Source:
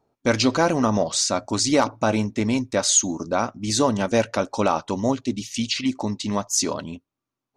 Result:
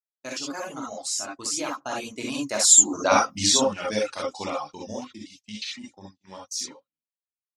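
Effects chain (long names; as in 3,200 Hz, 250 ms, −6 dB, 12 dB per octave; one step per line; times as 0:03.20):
source passing by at 0:03.14, 29 m/s, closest 5.3 metres
noise gate −48 dBFS, range −39 dB
spectral tilt +2.5 dB per octave
reverb whose tail is shaped and stops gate 90 ms rising, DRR −3 dB
in parallel at +2.5 dB: downward compressor, threshold −34 dBFS, peak gain reduction 22.5 dB
on the sum: reverb reduction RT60 0.79 s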